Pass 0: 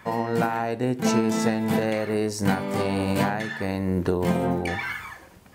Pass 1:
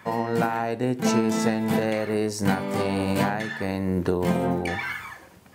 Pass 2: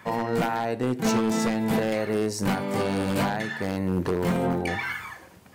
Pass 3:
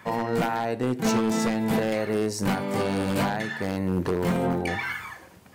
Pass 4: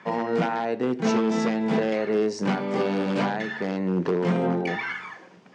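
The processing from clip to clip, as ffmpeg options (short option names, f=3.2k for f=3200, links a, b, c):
-af "highpass=77"
-af "acontrast=65,aeval=exprs='0.299*(abs(mod(val(0)/0.299+3,4)-2)-1)':c=same,volume=-6.5dB"
-af anull
-af "highpass=f=160:w=0.5412,highpass=f=160:w=1.3066,equalizer=f=170:t=q:w=4:g=4,equalizer=f=410:t=q:w=4:g=4,equalizer=f=4.2k:t=q:w=4:g=-4,lowpass=f=5.7k:w=0.5412,lowpass=f=5.7k:w=1.3066"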